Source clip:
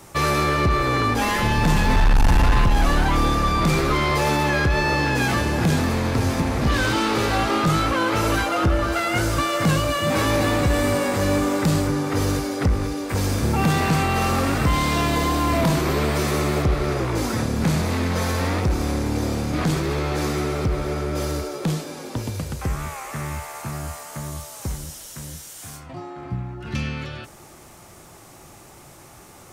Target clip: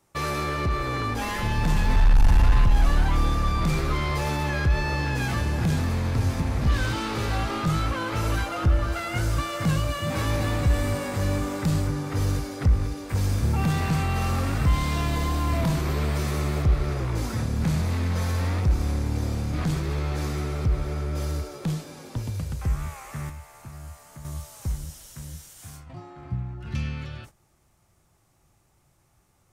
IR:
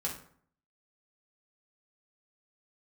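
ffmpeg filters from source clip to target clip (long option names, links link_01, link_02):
-filter_complex "[0:a]agate=range=-14dB:threshold=-40dB:ratio=16:detection=peak,asubboost=boost=2.5:cutoff=170,asettb=1/sr,asplit=3[link_01][link_02][link_03];[link_01]atrim=end=23.294[link_04];[link_02]atrim=start=23.29:end=24.25,asetpts=PTS-STARTPTS,afade=type=in:duration=0.004:curve=qsin,afade=type=out:start_time=0.956:duration=0.004:curve=qsin,acrossover=split=90|360|810[link_05][link_06][link_07][link_08];[link_05]acompressor=threshold=-35dB:ratio=4[link_09];[link_06]acompressor=threshold=-39dB:ratio=4[link_10];[link_07]acompressor=threshold=-49dB:ratio=4[link_11];[link_08]acompressor=threshold=-43dB:ratio=4[link_12];[link_09][link_10][link_11][link_12]amix=inputs=4:normalize=0[link_13];[link_03]atrim=start=24.246[link_14];[link_04][link_13]acrossfade=duration=0.004:curve1=hsin:curve2=qsin[link_15];[link_15][link_14]acrossfade=duration=0.004:curve1=qsin:curve2=hsin,volume=-7.5dB"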